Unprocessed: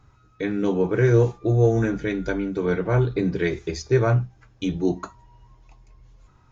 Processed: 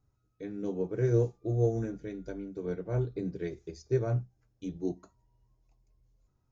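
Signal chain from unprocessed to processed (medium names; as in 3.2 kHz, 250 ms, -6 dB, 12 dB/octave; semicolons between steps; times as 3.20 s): high-order bell 1.8 kHz -8.5 dB 2.4 oct; upward expansion 1.5:1, over -32 dBFS; trim -8 dB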